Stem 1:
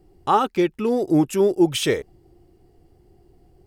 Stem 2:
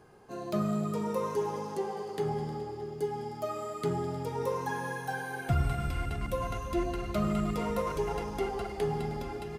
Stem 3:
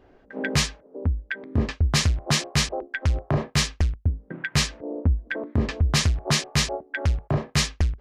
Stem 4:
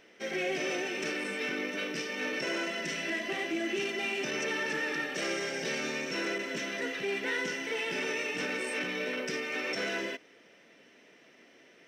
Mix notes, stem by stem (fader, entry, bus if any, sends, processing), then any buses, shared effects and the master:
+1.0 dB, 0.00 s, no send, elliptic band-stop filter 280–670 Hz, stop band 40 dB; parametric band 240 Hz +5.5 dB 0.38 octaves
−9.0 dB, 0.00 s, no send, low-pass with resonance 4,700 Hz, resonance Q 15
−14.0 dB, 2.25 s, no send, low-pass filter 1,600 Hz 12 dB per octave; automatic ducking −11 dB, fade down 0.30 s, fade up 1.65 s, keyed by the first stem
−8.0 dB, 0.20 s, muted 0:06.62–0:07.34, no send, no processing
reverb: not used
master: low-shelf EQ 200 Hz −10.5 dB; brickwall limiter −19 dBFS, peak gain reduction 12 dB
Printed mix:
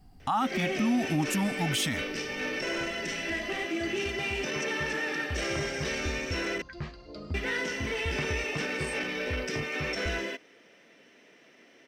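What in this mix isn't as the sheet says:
stem 2 −9.0 dB → −17.0 dB
stem 4 −8.0 dB → +1.0 dB
master: missing low-shelf EQ 200 Hz −10.5 dB

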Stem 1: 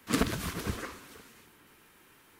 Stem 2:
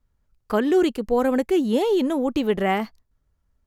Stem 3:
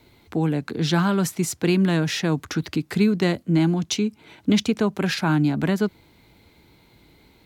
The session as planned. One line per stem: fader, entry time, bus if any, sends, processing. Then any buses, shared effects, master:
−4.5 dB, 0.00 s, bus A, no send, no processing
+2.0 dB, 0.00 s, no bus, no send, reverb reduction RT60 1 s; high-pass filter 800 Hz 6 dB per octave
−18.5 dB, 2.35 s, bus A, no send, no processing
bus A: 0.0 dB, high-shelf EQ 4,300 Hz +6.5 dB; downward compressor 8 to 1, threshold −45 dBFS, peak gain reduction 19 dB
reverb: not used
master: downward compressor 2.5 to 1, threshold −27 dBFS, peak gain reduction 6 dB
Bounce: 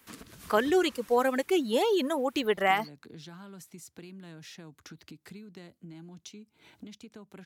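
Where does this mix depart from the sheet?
stem 3 −18.5 dB → −9.5 dB
master: missing downward compressor 2.5 to 1, threshold −27 dBFS, peak gain reduction 6 dB

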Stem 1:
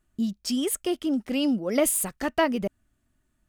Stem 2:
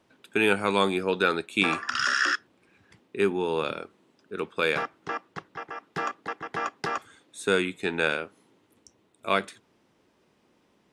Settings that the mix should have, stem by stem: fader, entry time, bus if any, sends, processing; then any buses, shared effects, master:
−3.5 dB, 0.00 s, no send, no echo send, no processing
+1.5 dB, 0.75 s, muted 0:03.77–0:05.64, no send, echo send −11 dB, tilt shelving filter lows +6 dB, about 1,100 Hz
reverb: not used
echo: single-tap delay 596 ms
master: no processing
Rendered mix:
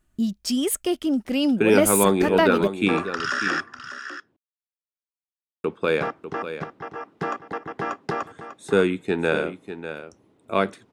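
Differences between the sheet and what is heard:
stem 1 −3.5 dB → +3.0 dB
stem 2: entry 0.75 s → 1.25 s

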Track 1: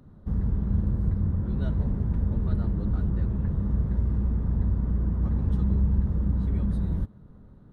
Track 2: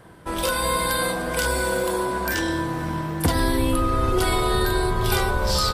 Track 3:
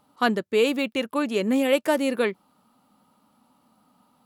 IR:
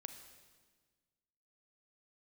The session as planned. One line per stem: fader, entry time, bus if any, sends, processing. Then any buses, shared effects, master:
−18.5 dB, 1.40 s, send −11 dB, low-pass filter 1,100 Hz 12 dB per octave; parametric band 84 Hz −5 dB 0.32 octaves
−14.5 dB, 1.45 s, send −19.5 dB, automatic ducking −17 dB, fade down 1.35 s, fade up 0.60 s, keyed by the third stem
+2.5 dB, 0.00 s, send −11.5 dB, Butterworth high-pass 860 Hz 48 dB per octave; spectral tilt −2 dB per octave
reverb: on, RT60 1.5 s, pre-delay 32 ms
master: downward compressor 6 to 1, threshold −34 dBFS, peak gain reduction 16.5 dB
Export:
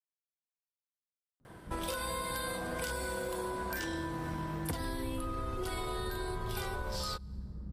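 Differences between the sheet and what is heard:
stem 1: missing low-pass filter 1,100 Hz 12 dB per octave
stem 2 −14.5 dB → −5.0 dB
stem 3: muted

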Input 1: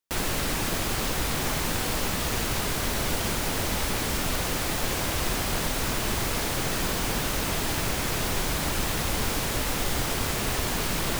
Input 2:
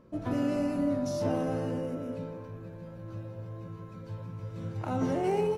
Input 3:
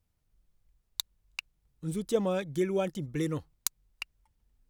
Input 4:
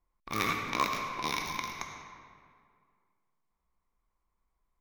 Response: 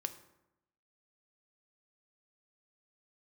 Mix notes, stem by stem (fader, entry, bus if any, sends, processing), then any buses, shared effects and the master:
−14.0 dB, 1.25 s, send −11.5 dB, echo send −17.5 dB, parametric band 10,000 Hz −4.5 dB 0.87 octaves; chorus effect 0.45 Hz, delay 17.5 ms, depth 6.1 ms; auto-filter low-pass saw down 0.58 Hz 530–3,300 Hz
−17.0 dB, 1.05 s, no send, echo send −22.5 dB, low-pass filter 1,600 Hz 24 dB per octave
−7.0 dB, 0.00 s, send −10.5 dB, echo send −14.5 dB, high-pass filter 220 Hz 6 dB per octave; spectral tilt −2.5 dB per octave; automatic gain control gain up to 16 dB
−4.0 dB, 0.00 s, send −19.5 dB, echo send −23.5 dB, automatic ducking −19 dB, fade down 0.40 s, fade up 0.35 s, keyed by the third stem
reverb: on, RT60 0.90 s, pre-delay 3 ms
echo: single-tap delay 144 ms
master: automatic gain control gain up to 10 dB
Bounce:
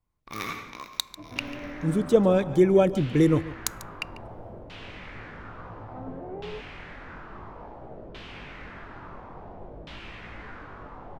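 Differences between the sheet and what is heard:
stem 2 −17.0 dB → −10.5 dB
master: missing automatic gain control gain up to 10 dB

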